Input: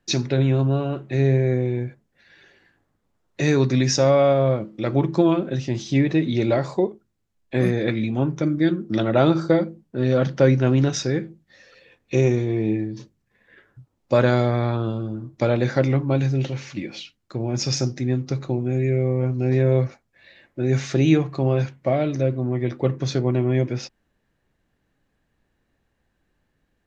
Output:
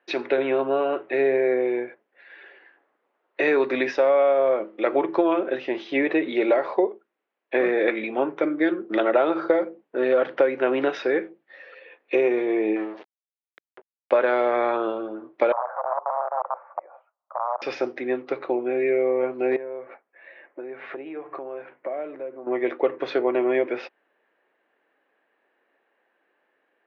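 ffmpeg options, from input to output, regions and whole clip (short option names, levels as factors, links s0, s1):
-filter_complex "[0:a]asettb=1/sr,asplit=3[s0][s1][s2];[s0]atrim=end=12.764[s3];[s1]atrim=start=12.76:end=14.56,asetpts=PTS-STARTPTS,afade=t=in:d=0.004:c=qsin,afade=t=out:st=1.796:d=0.004:c=qsin,aeval=exprs='sgn(val(0))*max(abs(val(0))-0.00944,0)':c=same,acompressor=mode=upward:threshold=0.0251:ratio=2.5:attack=3.2:release=140:knee=2.83:detection=peak[s4];[s2]atrim=start=14.556[s5];[s3][s4]acrossfade=d=0.004:c1=hsin:c2=qsin[s6];[s6][s5]acrossfade=d=0.004:c1=qsin:c2=hsin,asettb=1/sr,asplit=3[s7][s8][s9];[s7]atrim=end=15.524[s10];[s8]atrim=start=15.52:end=17.62,asetpts=PTS-STARTPTS,afade=t=in:d=0.004:c=qsin,afade=t=out:st=2.096:d=0.004:c=qsin,acompressor=threshold=0.0891:ratio=3:attack=3.2:release=140:knee=1:detection=peak,aeval=exprs='(mod(10*val(0)+1,2)-1)/10':c=same,asuperpass=centerf=860:order=8:qfactor=1.3[s11];[s9]atrim=start=17.616[s12];[s10][s11]acrossfade=d=0.004:c1=hsin:c2=qsin[s13];[s13][s12]acrossfade=d=0.004:c1=qsin:c2=hsin,asettb=1/sr,asplit=3[s14][s15][s16];[s14]atrim=end=19.564[s17];[s15]atrim=start=19.56:end=22.47,asetpts=PTS-STARTPTS,afade=t=in:d=0.004:c=qsin,afade=t=out:st=2.906:d=0.004:c=qsin,acompressor=threshold=0.0251:ratio=6:attack=3.2:release=140:knee=1:detection=peak,lowpass=2000[s18];[s16]atrim=start=22.466[s19];[s17][s18]acrossfade=d=0.004:c1=hsin:c2=qsin[s20];[s20][s19]acrossfade=d=0.004:c1=qsin:c2=hsin,highpass=f=390:w=0.5412,highpass=f=390:w=1.3066,acompressor=threshold=0.0708:ratio=6,lowpass=f=2700:w=0.5412,lowpass=f=2700:w=1.3066,volume=2.24"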